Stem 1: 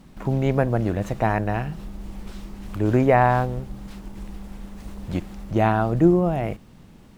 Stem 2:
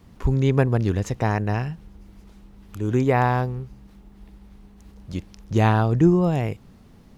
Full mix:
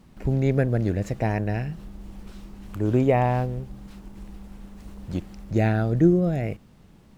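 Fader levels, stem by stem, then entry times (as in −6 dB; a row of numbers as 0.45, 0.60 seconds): −6.0, −8.0 decibels; 0.00, 0.00 seconds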